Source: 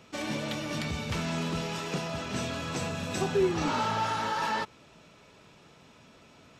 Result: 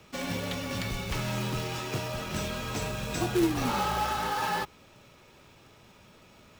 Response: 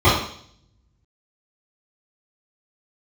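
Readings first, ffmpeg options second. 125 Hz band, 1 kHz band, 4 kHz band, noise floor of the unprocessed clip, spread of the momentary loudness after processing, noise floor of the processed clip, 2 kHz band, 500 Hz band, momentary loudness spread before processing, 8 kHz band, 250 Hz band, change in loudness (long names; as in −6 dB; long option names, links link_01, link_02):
+1.5 dB, 0.0 dB, +0.5 dB, −57 dBFS, 7 LU, −57 dBFS, 0.0 dB, −2.0 dB, 6 LU, +1.5 dB, +1.0 dB, 0.0 dB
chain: -af "acrusher=bits=3:mode=log:mix=0:aa=0.000001,afreqshift=-43"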